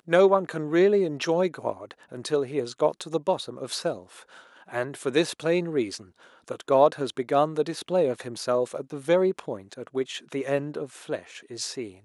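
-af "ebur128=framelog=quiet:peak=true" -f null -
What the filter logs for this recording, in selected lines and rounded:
Integrated loudness:
  I:         -26.2 LUFS
  Threshold: -36.8 LUFS
Loudness range:
  LRA:         4.6 LU
  Threshold: -47.2 LUFS
  LRA low:   -29.7 LUFS
  LRA high:  -25.1 LUFS
True peak:
  Peak:       -6.3 dBFS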